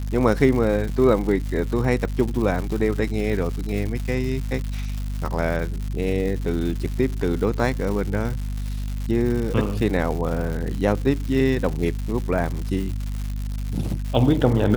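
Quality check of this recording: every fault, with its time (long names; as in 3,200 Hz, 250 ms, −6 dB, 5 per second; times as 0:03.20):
surface crackle 220 per second −28 dBFS
mains hum 50 Hz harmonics 5 −27 dBFS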